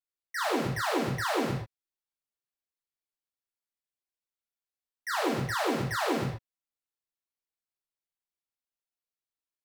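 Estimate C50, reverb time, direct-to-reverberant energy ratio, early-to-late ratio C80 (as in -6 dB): 2.0 dB, no single decay rate, -5.0 dB, 5.0 dB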